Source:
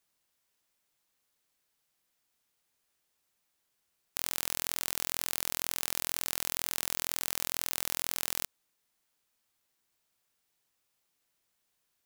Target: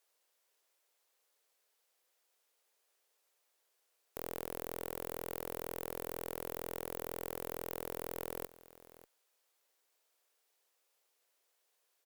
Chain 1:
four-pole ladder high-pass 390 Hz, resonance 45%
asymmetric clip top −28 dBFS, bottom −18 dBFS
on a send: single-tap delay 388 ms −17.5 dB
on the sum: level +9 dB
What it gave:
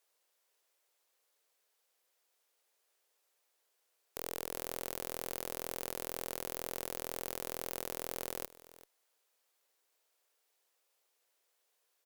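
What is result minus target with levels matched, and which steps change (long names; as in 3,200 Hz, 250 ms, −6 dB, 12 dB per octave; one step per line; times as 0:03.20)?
echo 204 ms early; asymmetric clip: distortion −6 dB
change: asymmetric clip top −37.5 dBFS, bottom −18 dBFS
change: single-tap delay 592 ms −17.5 dB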